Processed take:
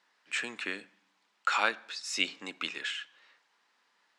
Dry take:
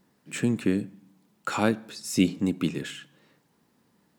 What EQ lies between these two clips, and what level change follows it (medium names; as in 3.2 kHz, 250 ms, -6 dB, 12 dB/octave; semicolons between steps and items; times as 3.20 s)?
high-pass 1.3 kHz 12 dB/octave; distance through air 120 m; +6.5 dB